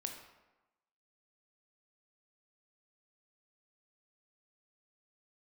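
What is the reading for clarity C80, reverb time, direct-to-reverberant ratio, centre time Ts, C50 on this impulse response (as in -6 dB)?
8.0 dB, 1.1 s, 3.5 dB, 29 ms, 6.0 dB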